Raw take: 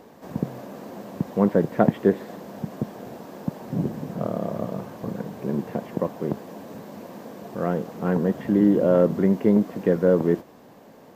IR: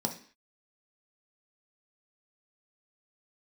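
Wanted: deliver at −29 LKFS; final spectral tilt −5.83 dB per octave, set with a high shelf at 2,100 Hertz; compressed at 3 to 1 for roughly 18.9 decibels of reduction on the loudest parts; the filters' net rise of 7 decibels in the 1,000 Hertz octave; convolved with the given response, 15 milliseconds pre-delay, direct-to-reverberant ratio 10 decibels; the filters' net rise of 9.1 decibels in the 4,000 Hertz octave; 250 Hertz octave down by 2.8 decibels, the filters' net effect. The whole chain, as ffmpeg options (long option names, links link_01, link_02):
-filter_complex "[0:a]equalizer=frequency=250:width_type=o:gain=-4.5,equalizer=frequency=1000:width_type=o:gain=8.5,highshelf=frequency=2100:gain=7,equalizer=frequency=4000:width_type=o:gain=4.5,acompressor=threshold=-37dB:ratio=3,asplit=2[link_01][link_02];[1:a]atrim=start_sample=2205,adelay=15[link_03];[link_02][link_03]afir=irnorm=-1:irlink=0,volume=-15dB[link_04];[link_01][link_04]amix=inputs=2:normalize=0,volume=8dB"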